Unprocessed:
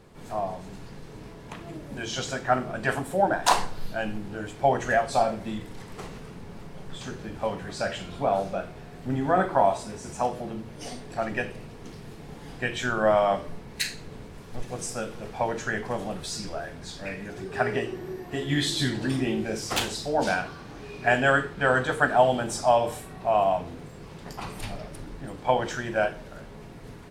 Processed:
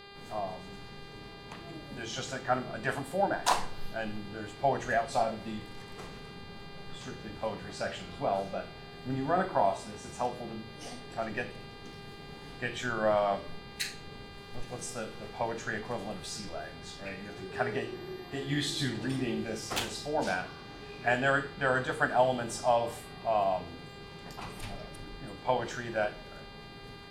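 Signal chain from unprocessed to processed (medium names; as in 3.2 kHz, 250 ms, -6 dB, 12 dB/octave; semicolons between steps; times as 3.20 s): mains buzz 400 Hz, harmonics 12, -45 dBFS -2 dB/octave; trim -6 dB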